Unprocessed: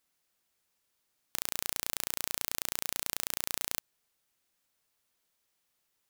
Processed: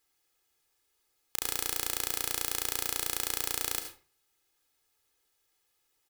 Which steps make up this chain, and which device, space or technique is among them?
microphone above a desk (comb 2.4 ms, depth 77%; reverb RT60 0.40 s, pre-delay 67 ms, DRR 6.5 dB)

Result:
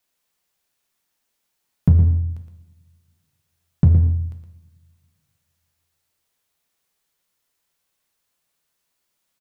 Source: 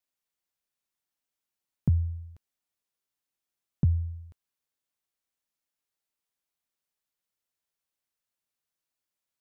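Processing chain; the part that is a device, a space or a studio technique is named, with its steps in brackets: 1.89–2.3 steep low-pass 580 Hz 36 dB/oct; outdoor echo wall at 20 m, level -8 dB; two-slope reverb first 0.91 s, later 2.4 s, from -24 dB, DRR 5.5 dB; parallel distortion (in parallel at -5 dB: hard clip -29.5 dBFS, distortion -5 dB); on the sum: gain +8 dB

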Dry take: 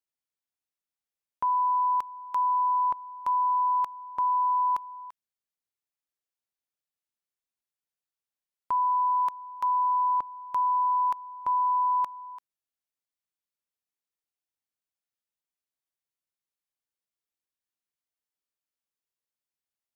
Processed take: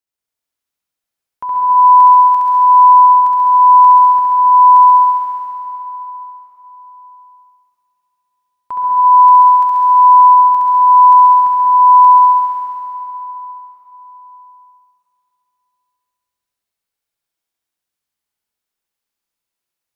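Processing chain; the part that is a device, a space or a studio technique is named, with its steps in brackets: tunnel (flutter echo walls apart 11.7 m, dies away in 1.4 s; reverb RT60 3.6 s, pre-delay 0.106 s, DRR -3 dB); gain +3 dB

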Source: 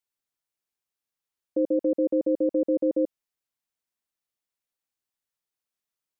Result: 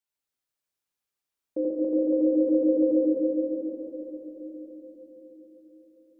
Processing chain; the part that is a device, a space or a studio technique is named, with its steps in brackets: cathedral (reverb RT60 4.6 s, pre-delay 3 ms, DRR -4.5 dB); gain -4 dB

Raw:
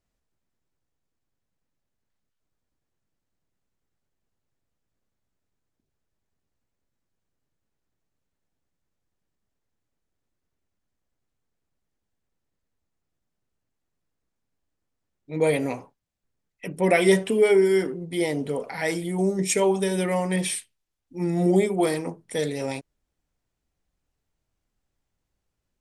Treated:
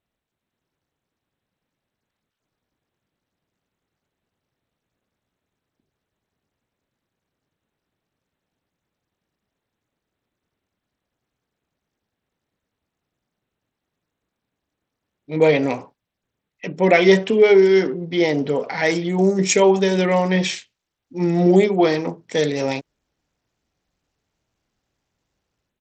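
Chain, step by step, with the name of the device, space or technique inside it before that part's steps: Bluetooth headset (HPF 120 Hz 6 dB/oct; AGC gain up to 6 dB; downsampling 16000 Hz; gain +1.5 dB; SBC 64 kbps 32000 Hz)

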